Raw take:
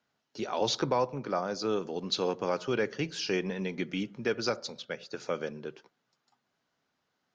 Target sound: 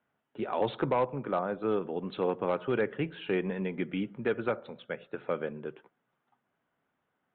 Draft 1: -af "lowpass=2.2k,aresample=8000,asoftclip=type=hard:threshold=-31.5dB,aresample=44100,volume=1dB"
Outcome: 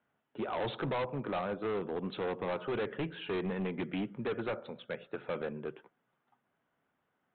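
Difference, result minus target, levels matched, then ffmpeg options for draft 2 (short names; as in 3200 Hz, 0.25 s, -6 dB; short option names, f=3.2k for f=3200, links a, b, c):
hard clip: distortion +16 dB
-af "lowpass=2.2k,aresample=8000,asoftclip=type=hard:threshold=-21dB,aresample=44100,volume=1dB"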